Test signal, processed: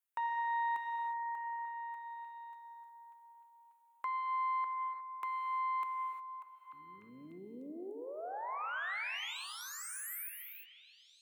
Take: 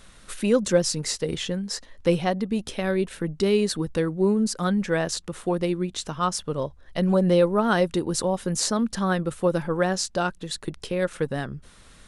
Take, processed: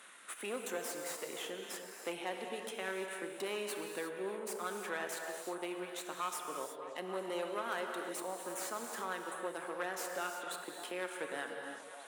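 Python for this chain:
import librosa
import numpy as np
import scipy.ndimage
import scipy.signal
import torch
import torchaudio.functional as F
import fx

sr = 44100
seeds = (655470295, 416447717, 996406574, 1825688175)

y = fx.peak_eq(x, sr, hz=470.0, db=-13.0, octaves=2.2)
y = fx.tube_stage(y, sr, drive_db=28.0, bias=0.7)
y = scipy.signal.sosfilt(scipy.signal.butter(4, 340.0, 'highpass', fs=sr, output='sos'), y)
y = fx.rider(y, sr, range_db=3, speed_s=2.0)
y = fx.peak_eq(y, sr, hz=5000.0, db=-14.0, octaves=1.0)
y = fx.echo_stepped(y, sr, ms=297, hz=490.0, octaves=0.7, feedback_pct=70, wet_db=-9.5)
y = fx.rev_gated(y, sr, seeds[0], gate_ms=380, shape='flat', drr_db=3.5)
y = fx.band_squash(y, sr, depth_pct=40)
y = F.gain(torch.from_numpy(y), -2.5).numpy()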